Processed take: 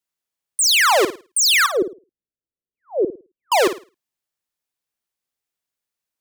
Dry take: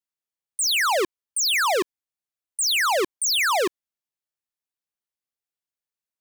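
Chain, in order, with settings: 1.66–3.52 steep low-pass 530 Hz 36 dB/oct; on a send: flutter echo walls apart 9.2 m, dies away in 0.31 s; on the sum: gain +6 dB

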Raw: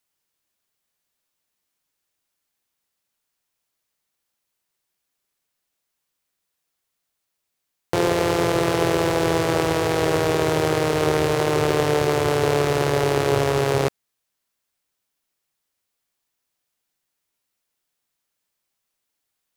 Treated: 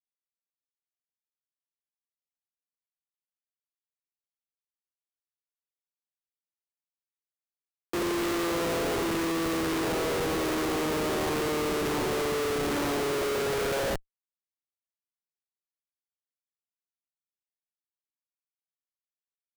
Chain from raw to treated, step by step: early reflections 55 ms -8.5 dB, 73 ms -4.5 dB; high-pass sweep 280 Hz -> 1700 Hz, 13.01–15.11; Schmitt trigger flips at -25 dBFS; gain -8 dB

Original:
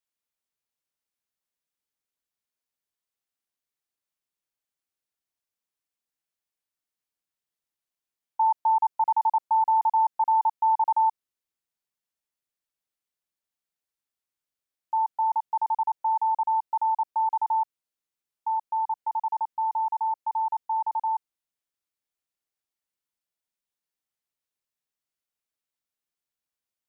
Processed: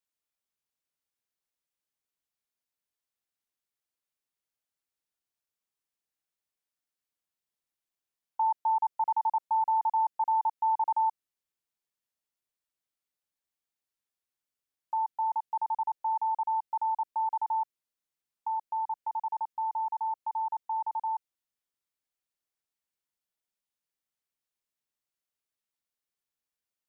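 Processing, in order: dynamic EQ 950 Hz, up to -3 dB, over -34 dBFS, Q 1.5; gain -2 dB

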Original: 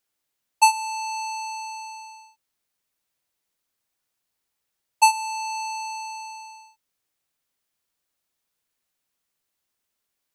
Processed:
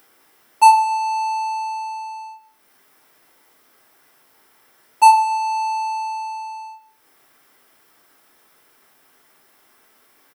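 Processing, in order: high shelf 8700 Hz +7 dB; upward compressor, threshold -34 dBFS; echo 0.197 s -23 dB; reverb RT60 0.60 s, pre-delay 3 ms, DRR -0.5 dB; gain -6 dB

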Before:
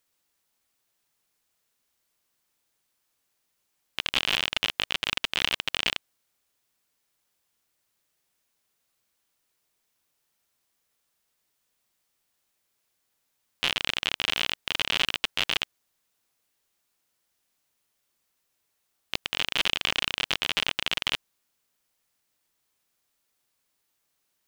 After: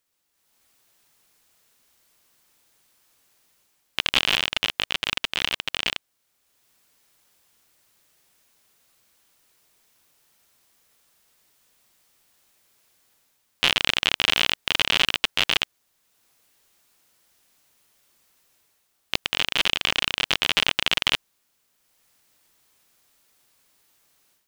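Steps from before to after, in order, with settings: AGC gain up to 13 dB; gain -1 dB

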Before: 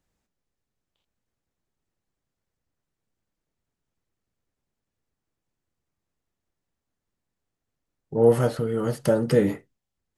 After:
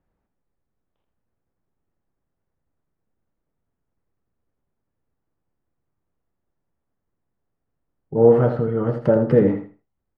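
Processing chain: LPF 1400 Hz 12 dB/oct; feedback echo 81 ms, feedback 22%, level -8.5 dB; gain +4 dB

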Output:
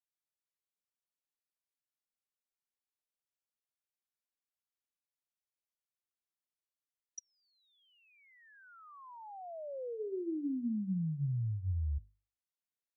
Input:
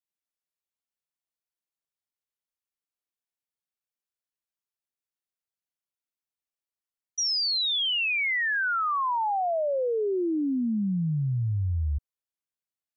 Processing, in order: notches 50/100/150/200/250/300/350/400/450 Hz; treble ducked by the level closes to 350 Hz, closed at -27 dBFS; gain -7 dB

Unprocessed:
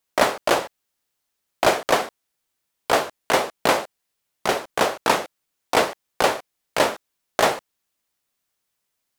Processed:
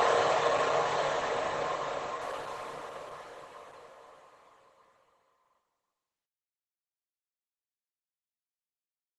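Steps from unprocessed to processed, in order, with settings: modulation noise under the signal 11 dB; thirty-one-band EQ 200 Hz -5 dB, 1000 Hz +8 dB, 5000 Hz -6 dB; non-linear reverb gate 0.36 s flat, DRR 6 dB; gate -40 dBFS, range -39 dB; HPF 47 Hz 6 dB/oct; high shelf 6400 Hz -10.5 dB; comb 1.7 ms, depth 34%; Paulstretch 18×, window 0.50 s, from 7.82; stuck buffer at 5.41, samples 2048, times 3; gain +5 dB; Opus 12 kbps 48000 Hz

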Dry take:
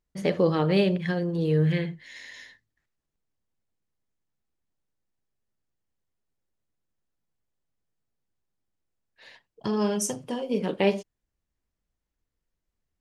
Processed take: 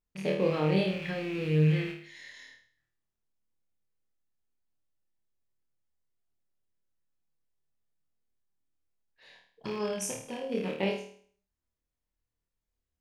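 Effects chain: rattling part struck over -36 dBFS, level -26 dBFS; on a send: flutter echo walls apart 4.5 m, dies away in 0.52 s; on the sum: gain -8 dB

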